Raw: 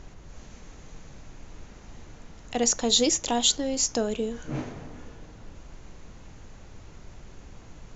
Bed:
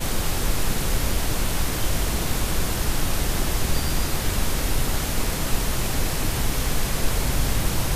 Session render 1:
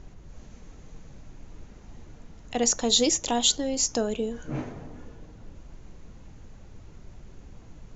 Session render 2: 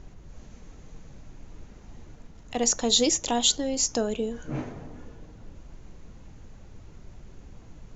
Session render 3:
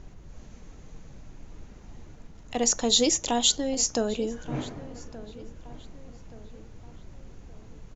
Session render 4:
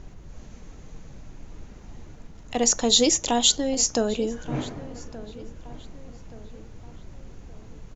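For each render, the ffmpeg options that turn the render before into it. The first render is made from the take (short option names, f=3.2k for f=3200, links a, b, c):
-af "afftdn=nr=6:nf=-48"
-filter_complex "[0:a]asplit=3[a][b][c];[a]afade=t=out:st=2.13:d=0.02[d];[b]aeval=exprs='if(lt(val(0),0),0.708*val(0),val(0))':c=same,afade=t=in:st=2.13:d=0.02,afade=t=out:st=2.65:d=0.02[e];[c]afade=t=in:st=2.65:d=0.02[f];[d][e][f]amix=inputs=3:normalize=0"
-filter_complex "[0:a]asplit=2[a][b];[b]adelay=1175,lowpass=f=2.6k:p=1,volume=-17dB,asplit=2[c][d];[d]adelay=1175,lowpass=f=2.6k:p=1,volume=0.45,asplit=2[e][f];[f]adelay=1175,lowpass=f=2.6k:p=1,volume=0.45,asplit=2[g][h];[h]adelay=1175,lowpass=f=2.6k:p=1,volume=0.45[i];[a][c][e][g][i]amix=inputs=5:normalize=0"
-af "volume=3dB"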